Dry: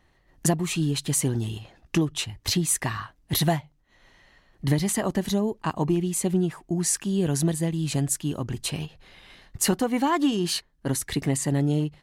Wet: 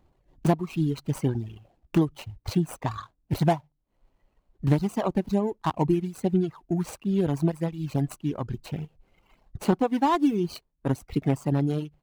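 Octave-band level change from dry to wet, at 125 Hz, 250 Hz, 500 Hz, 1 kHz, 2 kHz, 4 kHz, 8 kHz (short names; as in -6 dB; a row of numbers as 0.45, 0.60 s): -0.5, 0.0, +0.5, +2.0, -6.5, -12.0, -19.5 dB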